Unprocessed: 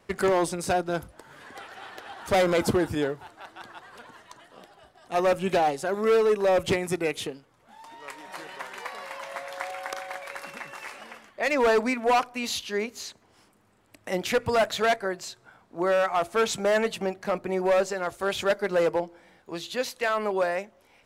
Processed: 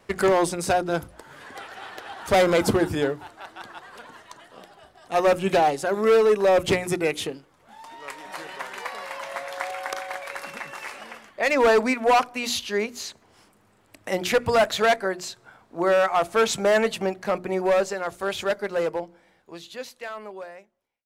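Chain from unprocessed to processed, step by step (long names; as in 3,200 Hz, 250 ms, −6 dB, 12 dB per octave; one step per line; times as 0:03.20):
fade-out on the ending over 4.09 s
mains-hum notches 60/120/180/240/300/360 Hz
level +3.5 dB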